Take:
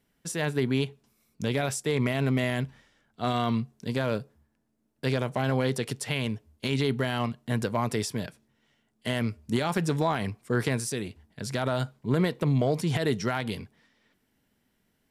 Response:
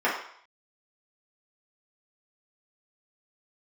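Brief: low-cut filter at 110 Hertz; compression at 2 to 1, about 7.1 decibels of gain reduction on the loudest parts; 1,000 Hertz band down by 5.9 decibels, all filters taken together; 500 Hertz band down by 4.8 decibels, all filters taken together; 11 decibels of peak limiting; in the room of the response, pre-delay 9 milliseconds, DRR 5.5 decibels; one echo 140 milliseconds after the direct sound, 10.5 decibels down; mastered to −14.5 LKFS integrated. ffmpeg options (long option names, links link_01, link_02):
-filter_complex "[0:a]highpass=110,equalizer=frequency=500:width_type=o:gain=-4.5,equalizer=frequency=1000:width_type=o:gain=-6.5,acompressor=threshold=-36dB:ratio=2,alimiter=level_in=6dB:limit=-24dB:level=0:latency=1,volume=-6dB,aecho=1:1:140:0.299,asplit=2[link_01][link_02];[1:a]atrim=start_sample=2205,adelay=9[link_03];[link_02][link_03]afir=irnorm=-1:irlink=0,volume=-21dB[link_04];[link_01][link_04]amix=inputs=2:normalize=0,volume=25.5dB"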